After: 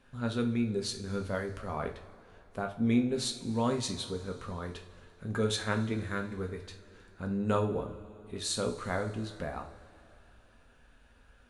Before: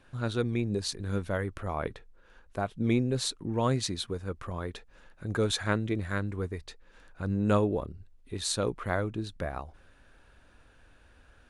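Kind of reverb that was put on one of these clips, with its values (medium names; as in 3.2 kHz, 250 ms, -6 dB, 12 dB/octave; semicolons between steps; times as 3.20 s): two-slope reverb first 0.35 s, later 2.8 s, from -18 dB, DRR 3 dB; trim -4 dB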